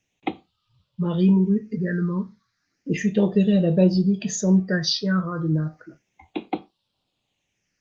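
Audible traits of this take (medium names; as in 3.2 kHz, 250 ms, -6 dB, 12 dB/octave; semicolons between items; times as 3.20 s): phasing stages 6, 0.33 Hz, lowest notch 730–1800 Hz; Opus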